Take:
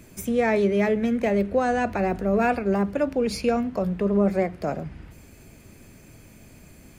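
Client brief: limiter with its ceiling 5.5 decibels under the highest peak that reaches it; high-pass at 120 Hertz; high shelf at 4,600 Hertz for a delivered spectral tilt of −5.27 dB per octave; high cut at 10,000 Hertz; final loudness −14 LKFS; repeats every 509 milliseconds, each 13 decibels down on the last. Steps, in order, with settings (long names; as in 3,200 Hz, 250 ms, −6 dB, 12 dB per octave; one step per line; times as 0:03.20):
high-pass filter 120 Hz
low-pass filter 10,000 Hz
high-shelf EQ 4,600 Hz +5 dB
brickwall limiter −16.5 dBFS
repeating echo 509 ms, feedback 22%, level −13 dB
level +11.5 dB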